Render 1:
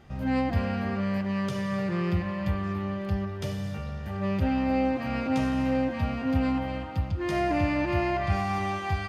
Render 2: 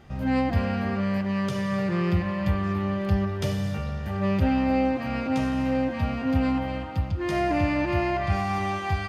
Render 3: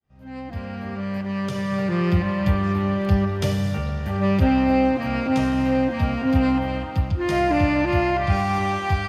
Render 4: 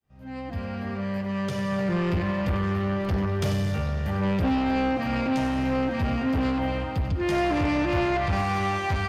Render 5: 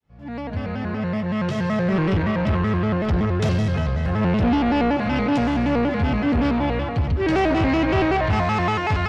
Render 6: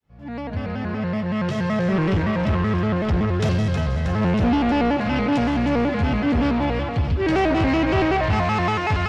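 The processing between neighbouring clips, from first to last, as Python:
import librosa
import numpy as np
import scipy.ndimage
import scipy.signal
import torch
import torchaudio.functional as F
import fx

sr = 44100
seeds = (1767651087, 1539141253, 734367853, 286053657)

y1 = fx.rider(x, sr, range_db=10, speed_s=2.0)
y1 = F.gain(torch.from_numpy(y1), 2.0).numpy()
y2 = fx.fade_in_head(y1, sr, length_s=2.27)
y2 = F.gain(torch.from_numpy(y2), 4.5).numpy()
y3 = 10.0 ** (-20.5 / 20.0) * np.tanh(y2 / 10.0 ** (-20.5 / 20.0))
y3 = y3 + 10.0 ** (-12.0 / 20.0) * np.pad(y3, (int(94 * sr / 1000.0), 0))[:len(y3)]
y4 = fx.air_absorb(y3, sr, metres=77.0)
y4 = fx.vibrato_shape(y4, sr, shape='square', rate_hz=5.3, depth_cents=160.0)
y4 = F.gain(torch.from_numpy(y4), 5.0).numpy()
y5 = fx.echo_wet_highpass(y4, sr, ms=317, feedback_pct=71, hz=2900.0, wet_db=-7.5)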